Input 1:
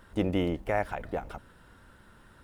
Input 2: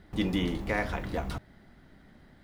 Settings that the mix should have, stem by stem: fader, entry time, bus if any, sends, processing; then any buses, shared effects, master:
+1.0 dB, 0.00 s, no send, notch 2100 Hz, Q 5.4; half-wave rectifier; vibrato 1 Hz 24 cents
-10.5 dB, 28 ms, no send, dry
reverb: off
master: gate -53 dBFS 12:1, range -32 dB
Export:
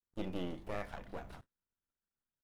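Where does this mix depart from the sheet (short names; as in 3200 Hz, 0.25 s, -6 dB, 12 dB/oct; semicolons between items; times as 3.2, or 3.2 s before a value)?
stem 1 +1.0 dB -> -8.0 dB; stem 2 -10.5 dB -> -19.5 dB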